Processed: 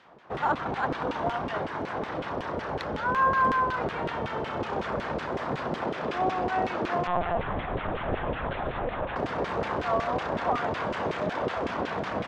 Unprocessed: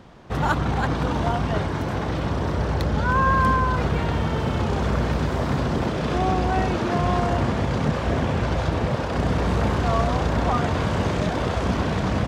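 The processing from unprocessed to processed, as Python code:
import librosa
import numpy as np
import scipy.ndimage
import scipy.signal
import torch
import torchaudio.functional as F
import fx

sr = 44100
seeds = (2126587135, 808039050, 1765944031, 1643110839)

y = fx.filter_lfo_bandpass(x, sr, shape='saw_down', hz=5.4, low_hz=400.0, high_hz=2700.0, q=1.0)
y = fx.lpc_vocoder(y, sr, seeds[0], excitation='pitch_kept', order=10, at=(7.07, 9.16))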